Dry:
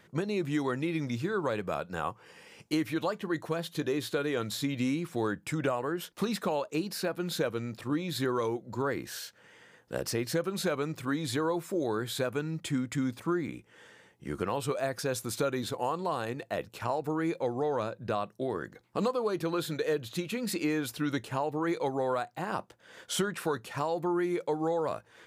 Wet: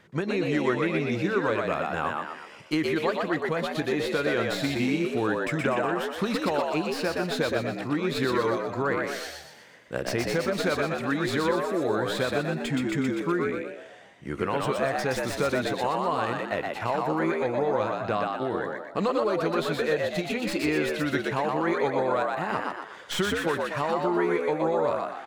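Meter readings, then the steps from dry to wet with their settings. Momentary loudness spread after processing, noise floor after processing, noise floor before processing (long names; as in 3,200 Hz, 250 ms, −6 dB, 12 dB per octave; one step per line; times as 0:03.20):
5 LU, −46 dBFS, −61 dBFS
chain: stylus tracing distortion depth 0.052 ms
high-shelf EQ 8,200 Hz −10 dB
on a send: echo with shifted repeats 122 ms, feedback 47%, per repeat +75 Hz, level −3 dB
on the sum: dynamic equaliser 2,000 Hz, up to +5 dB, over −49 dBFS, Q 1.1
level +2.5 dB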